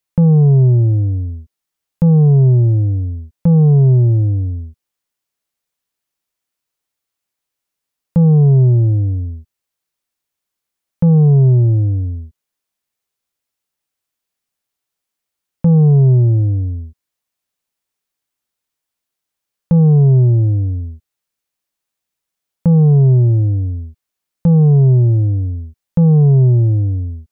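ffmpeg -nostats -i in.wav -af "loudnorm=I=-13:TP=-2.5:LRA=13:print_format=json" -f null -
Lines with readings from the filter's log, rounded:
"input_i" : "-12.5",
"input_tp" : "-6.9",
"input_lra" : "6.2",
"input_thresh" : "-23.3",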